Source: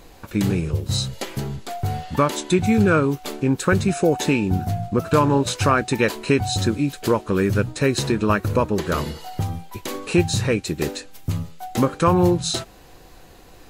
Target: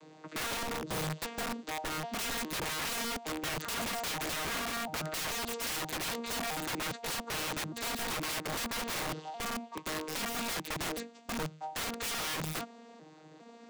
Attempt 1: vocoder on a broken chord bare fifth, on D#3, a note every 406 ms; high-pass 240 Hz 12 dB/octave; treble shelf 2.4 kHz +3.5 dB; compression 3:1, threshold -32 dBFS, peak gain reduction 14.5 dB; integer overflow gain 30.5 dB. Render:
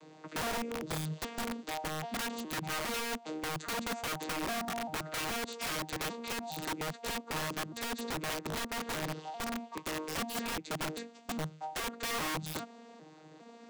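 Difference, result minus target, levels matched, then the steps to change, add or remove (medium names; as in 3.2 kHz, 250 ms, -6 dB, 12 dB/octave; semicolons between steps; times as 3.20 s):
compression: peak gain reduction +7 dB
change: compression 3:1, threshold -21.5 dBFS, peak gain reduction 7.5 dB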